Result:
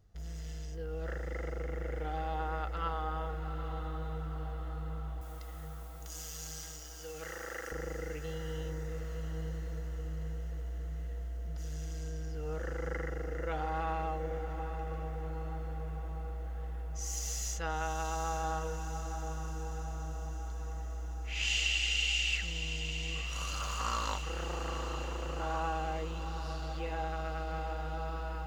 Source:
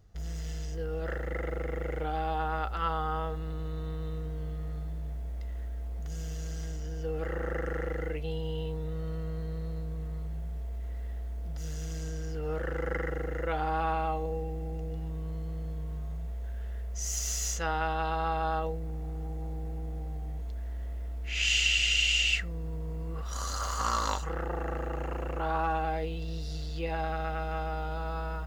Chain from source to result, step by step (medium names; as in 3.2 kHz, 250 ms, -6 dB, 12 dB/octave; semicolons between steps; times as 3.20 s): 5.21–7.72 s: tilt EQ +4.5 dB/octave; echo that smears into a reverb 853 ms, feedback 60%, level -8.5 dB; trim -5.5 dB